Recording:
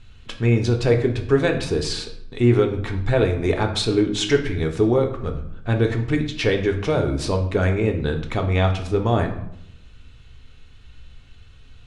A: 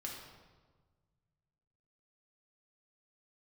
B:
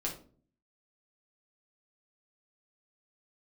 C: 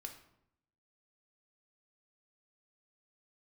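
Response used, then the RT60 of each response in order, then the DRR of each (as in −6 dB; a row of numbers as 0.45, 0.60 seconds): C; 1.4, 0.45, 0.75 seconds; −3.0, −2.5, 3.5 decibels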